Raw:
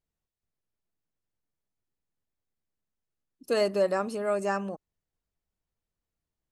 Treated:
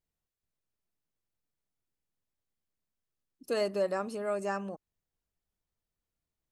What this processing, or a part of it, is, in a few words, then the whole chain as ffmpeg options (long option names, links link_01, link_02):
parallel compression: -filter_complex "[0:a]asplit=2[link_01][link_02];[link_02]acompressor=threshold=-41dB:ratio=6,volume=-5.5dB[link_03];[link_01][link_03]amix=inputs=2:normalize=0,volume=-5.5dB"